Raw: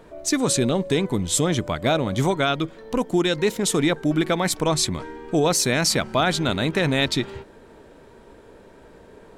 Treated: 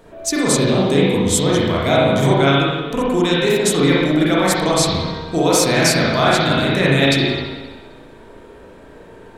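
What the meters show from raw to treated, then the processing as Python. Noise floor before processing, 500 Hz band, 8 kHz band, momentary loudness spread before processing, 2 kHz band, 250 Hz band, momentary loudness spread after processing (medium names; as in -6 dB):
-48 dBFS, +7.0 dB, +3.5 dB, 6 LU, +7.0 dB, +6.0 dB, 6 LU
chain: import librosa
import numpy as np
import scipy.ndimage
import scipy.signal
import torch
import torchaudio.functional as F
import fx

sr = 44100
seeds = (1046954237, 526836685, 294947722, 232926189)

y = fx.high_shelf(x, sr, hz=4300.0, db=6.0)
y = fx.rev_spring(y, sr, rt60_s=1.3, pass_ms=(36, 58), chirp_ms=30, drr_db=-6.5)
y = F.gain(torch.from_numpy(y), -1.0).numpy()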